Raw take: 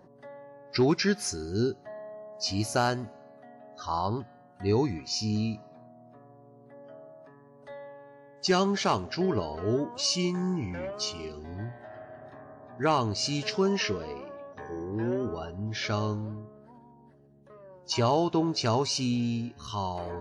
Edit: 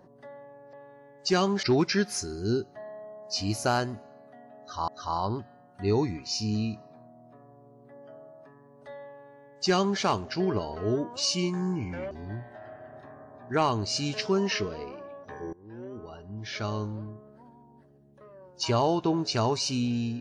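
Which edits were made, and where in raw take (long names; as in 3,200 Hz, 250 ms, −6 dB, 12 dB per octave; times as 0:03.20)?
0:03.69–0:03.98: repeat, 2 plays
0:07.91–0:08.81: duplicate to 0:00.73
0:10.92–0:11.40: remove
0:14.82–0:16.41: fade in linear, from −22 dB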